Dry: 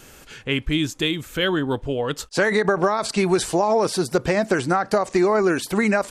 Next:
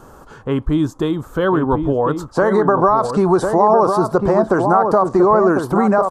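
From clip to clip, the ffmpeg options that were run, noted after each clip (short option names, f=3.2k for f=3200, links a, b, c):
-filter_complex "[0:a]highshelf=f=1.6k:t=q:w=3:g=-13,asplit=2[a][b];[b]adelay=1050,volume=-6dB,highshelf=f=4k:g=-23.6[c];[a][c]amix=inputs=2:normalize=0,asplit=2[d][e];[e]alimiter=limit=-14.5dB:level=0:latency=1:release=34,volume=-0.5dB[f];[d][f]amix=inputs=2:normalize=0"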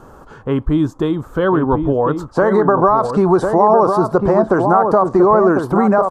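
-af "highshelf=f=3.7k:g=-8,volume=1.5dB"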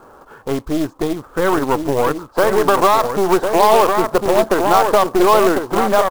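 -af "bass=f=250:g=-12,treble=f=4k:g=-14,acrusher=bits=4:mode=log:mix=0:aa=0.000001,aeval=exprs='0.841*(cos(1*acos(clip(val(0)/0.841,-1,1)))-cos(1*PI/2))+0.075*(cos(8*acos(clip(val(0)/0.841,-1,1)))-cos(8*PI/2))':c=same"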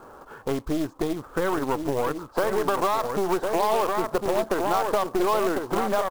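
-af "acompressor=threshold=-21dB:ratio=2.5,volume=-2.5dB"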